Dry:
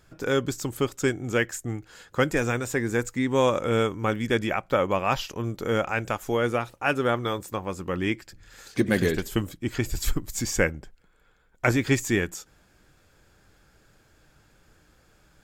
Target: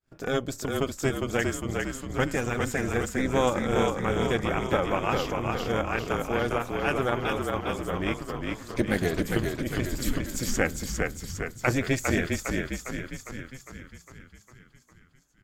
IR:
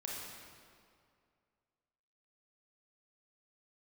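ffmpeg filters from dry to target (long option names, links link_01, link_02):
-filter_complex "[0:a]tremolo=f=260:d=0.75,agate=range=-33dB:threshold=-51dB:ratio=3:detection=peak,asplit=9[link_01][link_02][link_03][link_04][link_05][link_06][link_07][link_08][link_09];[link_02]adelay=405,afreqshift=-36,volume=-3.5dB[link_10];[link_03]adelay=810,afreqshift=-72,volume=-8.1dB[link_11];[link_04]adelay=1215,afreqshift=-108,volume=-12.7dB[link_12];[link_05]adelay=1620,afreqshift=-144,volume=-17.2dB[link_13];[link_06]adelay=2025,afreqshift=-180,volume=-21.8dB[link_14];[link_07]adelay=2430,afreqshift=-216,volume=-26.4dB[link_15];[link_08]adelay=2835,afreqshift=-252,volume=-31dB[link_16];[link_09]adelay=3240,afreqshift=-288,volume=-35.6dB[link_17];[link_01][link_10][link_11][link_12][link_13][link_14][link_15][link_16][link_17]amix=inputs=9:normalize=0"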